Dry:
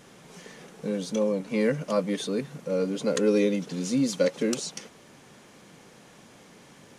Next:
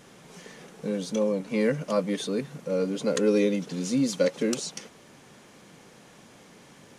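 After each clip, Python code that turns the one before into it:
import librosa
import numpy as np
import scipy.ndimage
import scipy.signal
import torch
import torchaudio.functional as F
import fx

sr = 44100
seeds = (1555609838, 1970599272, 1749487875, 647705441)

y = x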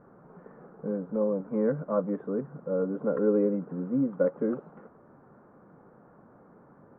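y = scipy.signal.sosfilt(scipy.signal.ellip(4, 1.0, 70, 1400.0, 'lowpass', fs=sr, output='sos'), x)
y = y * 10.0 ** (-1.5 / 20.0)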